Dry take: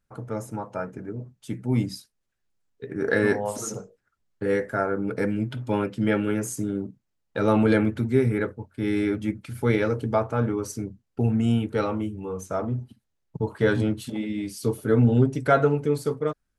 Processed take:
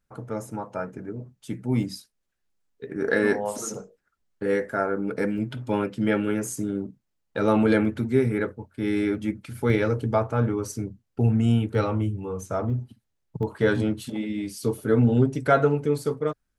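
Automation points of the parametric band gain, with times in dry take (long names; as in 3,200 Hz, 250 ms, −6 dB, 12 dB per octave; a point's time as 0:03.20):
parametric band 110 Hz 0.3 octaves
−4 dB
from 0:01.83 −13.5 dB
from 0:05.38 −4.5 dB
from 0:09.70 +4 dB
from 0:11.75 +11 dB
from 0:12.70 +4 dB
from 0:13.43 −3 dB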